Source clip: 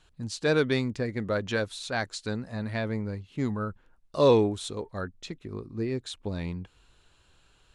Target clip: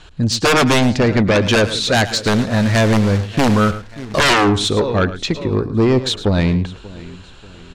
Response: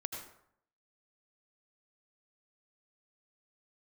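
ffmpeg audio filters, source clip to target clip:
-filter_complex "[0:a]asplit=2[a][b];[b]aecho=0:1:586|1172|1758:0.075|0.0315|0.0132[c];[a][c]amix=inputs=2:normalize=0,asettb=1/sr,asplit=3[d][e][f];[d]atrim=end=2.154[g];[e]atrim=start=2.15:end=4.19,asetpts=PTS-STARTPTS,afade=t=in:d=0.004:c=qsin,afade=t=out:st=2.036:d=0.004:c=qsin,acrusher=bits=2:mode=log:mix=0:aa=0.000001[h];[f]atrim=start=4.186[i];[g][h]acrossfade=d=0.004:c1=hsin:c2=qsin[j];[j][i]acrossfade=d=0.004:c1=qsin:c2=hsin,lowpass=6.3k,aeval=exprs='0.335*sin(PI/2*6.31*val(0)/0.335)':c=same,asplit=2[k][l];[l]aecho=0:1:109:0.2[m];[k][m]amix=inputs=2:normalize=0"

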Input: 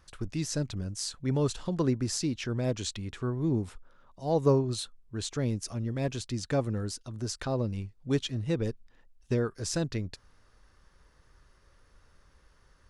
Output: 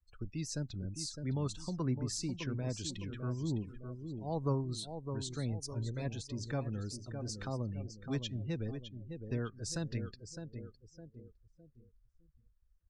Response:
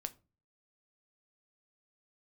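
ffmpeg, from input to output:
-filter_complex "[0:a]asettb=1/sr,asplit=3[a][b][c];[a]atrim=end=5.524[d];[b]atrim=start=5.52:end=6.02,asetpts=PTS-STARTPTS,afade=t=in:d=0.004:c=qsin,afade=t=out:st=0.496:d=0.004:c=qsin,aecho=1:1:2:0.51,atrim=end_sample=22050[e];[c]atrim=start=6.016[f];[d][e]acrossfade=d=0.004:c1=hsin:c2=qsin[g];[g][f]acrossfade=d=0.004:c1=qsin:c2=hsin,aecho=1:1:609|1218|1827|2436|3045:0.376|0.158|0.0663|0.0278|0.0117,acrossover=split=320|650|2500[h][i][j][k];[i]acompressor=threshold=-47dB:ratio=6[l];[h][l][j][k]amix=inputs=4:normalize=0,afftdn=nr=29:nf=-45,volume=-6dB"

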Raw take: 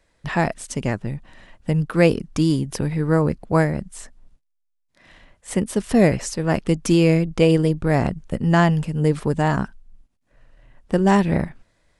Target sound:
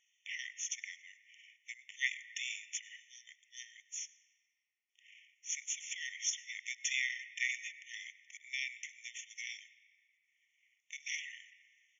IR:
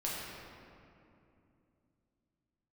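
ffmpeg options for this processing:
-filter_complex "[0:a]highpass=f=310:w=0.5412,highpass=f=310:w=1.3066,equalizer=f=340:t=q:w=4:g=9,equalizer=f=2.2k:t=q:w=4:g=-8,equalizer=f=5.6k:t=q:w=4:g=-6,lowpass=f=10k:w=0.5412,lowpass=f=10k:w=1.3066,asetrate=34006,aresample=44100,atempo=1.29684,asplit=2[a][b];[1:a]atrim=start_sample=2205,highshelf=f=3.8k:g=-9,adelay=99[c];[b][c]afir=irnorm=-1:irlink=0,volume=-16.5dB[d];[a][d]amix=inputs=2:normalize=0,afftfilt=real='re*eq(mod(floor(b*sr/1024/1800),2),1)':imag='im*eq(mod(floor(b*sr/1024/1800),2),1)':win_size=1024:overlap=0.75"

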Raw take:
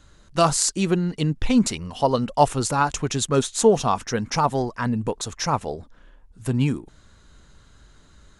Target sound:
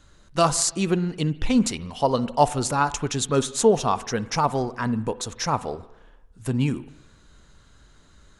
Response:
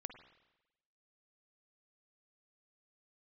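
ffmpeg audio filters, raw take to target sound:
-filter_complex "[0:a]asplit=2[a][b];[b]equalizer=f=63:w=0.45:g=-4.5[c];[1:a]atrim=start_sample=2205[d];[c][d]afir=irnorm=-1:irlink=0,volume=0dB[e];[a][e]amix=inputs=2:normalize=0,volume=-5dB"

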